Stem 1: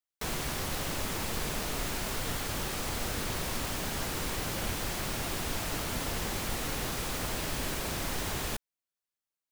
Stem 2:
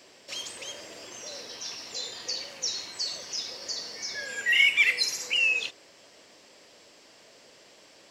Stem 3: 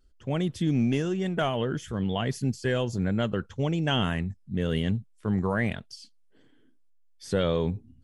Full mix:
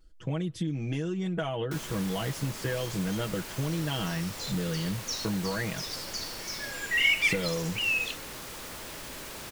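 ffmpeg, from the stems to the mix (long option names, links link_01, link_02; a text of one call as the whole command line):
ffmpeg -i stem1.wav -i stem2.wav -i stem3.wav -filter_complex "[0:a]lowshelf=frequency=200:gain=-8,bandreject=frequency=730:width=12,asoftclip=type=tanh:threshold=-36dB,adelay=1500,volume=-1.5dB[link_01];[1:a]adelay=2450,volume=-3dB[link_02];[2:a]aecho=1:1:6.2:0.77,acompressor=threshold=-31dB:ratio=8,volume=2.5dB,asplit=2[link_03][link_04];[link_04]apad=whole_len=465287[link_05];[link_02][link_05]sidechaincompress=threshold=-34dB:ratio=8:attack=16:release=390[link_06];[link_01][link_06][link_03]amix=inputs=3:normalize=0" out.wav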